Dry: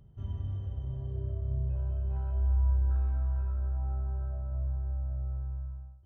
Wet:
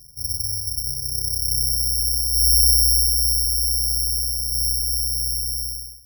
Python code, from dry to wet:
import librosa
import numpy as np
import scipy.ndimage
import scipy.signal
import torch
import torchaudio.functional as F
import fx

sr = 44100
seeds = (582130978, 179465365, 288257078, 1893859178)

y = fx.low_shelf(x, sr, hz=86.0, db=8.0)
y = (np.kron(scipy.signal.resample_poly(y, 1, 8), np.eye(8)[0]) * 8)[:len(y)]
y = y * 10.0 ** (-4.5 / 20.0)